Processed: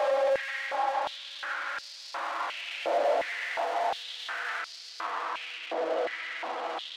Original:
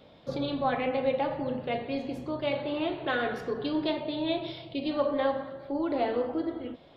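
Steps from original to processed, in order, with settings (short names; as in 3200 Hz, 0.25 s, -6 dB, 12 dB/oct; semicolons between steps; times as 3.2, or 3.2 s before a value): compressor 6:1, threshold -42 dBFS, peak gain reduction 18.5 dB; Paulstretch 5.5×, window 1.00 s, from 5.39; overdrive pedal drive 33 dB, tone 4500 Hz, clips at -30 dBFS; stepped high-pass 2.8 Hz 600–4700 Hz; gain +3 dB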